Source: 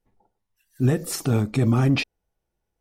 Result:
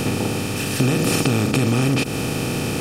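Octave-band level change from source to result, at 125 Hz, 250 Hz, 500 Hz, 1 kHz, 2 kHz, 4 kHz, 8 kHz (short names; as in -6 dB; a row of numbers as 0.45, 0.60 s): +2.0, +4.5, +6.5, +8.0, +8.5, +9.5, +9.0 dB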